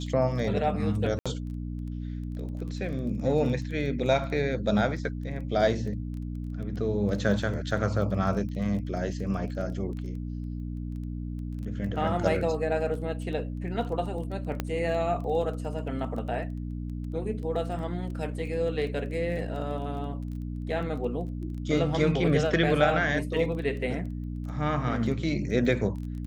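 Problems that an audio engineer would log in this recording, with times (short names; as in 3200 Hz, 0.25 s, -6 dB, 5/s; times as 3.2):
crackle 15/s -37 dBFS
hum 60 Hz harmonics 5 -34 dBFS
1.19–1.26 gap 66 ms
14.6 pop -14 dBFS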